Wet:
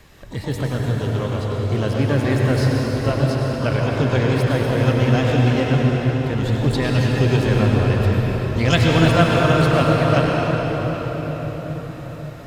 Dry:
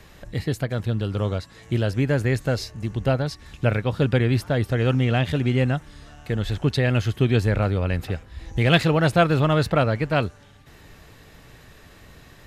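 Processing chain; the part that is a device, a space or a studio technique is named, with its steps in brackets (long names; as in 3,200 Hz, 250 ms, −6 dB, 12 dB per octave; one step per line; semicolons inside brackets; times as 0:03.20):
shimmer-style reverb (pitch-shifted copies added +12 semitones −11 dB; convolution reverb RT60 6.0 s, pre-delay 90 ms, DRR −3 dB)
level −1 dB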